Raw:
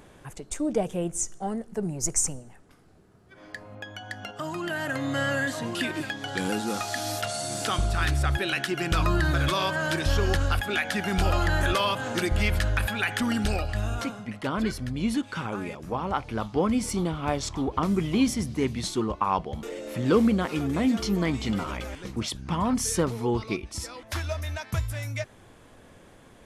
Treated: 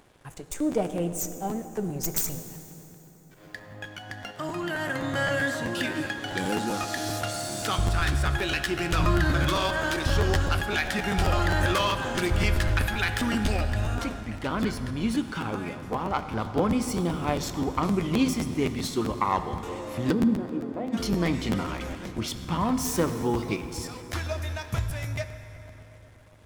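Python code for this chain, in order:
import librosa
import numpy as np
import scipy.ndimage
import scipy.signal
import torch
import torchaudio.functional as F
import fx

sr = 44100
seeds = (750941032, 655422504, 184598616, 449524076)

y = fx.self_delay(x, sr, depth_ms=0.09)
y = np.sign(y) * np.maximum(np.abs(y) - 10.0 ** (-53.0 / 20.0), 0.0)
y = fx.bandpass_q(y, sr, hz=fx.line((20.11, 170.0), (20.92, 740.0)), q=1.9, at=(20.11, 20.92), fade=0.02)
y = fx.rev_fdn(y, sr, rt60_s=3.9, lf_ratio=1.0, hf_ratio=0.65, size_ms=57.0, drr_db=8.0)
y = fx.buffer_crackle(y, sr, first_s=0.32, period_s=0.13, block=512, kind='repeat')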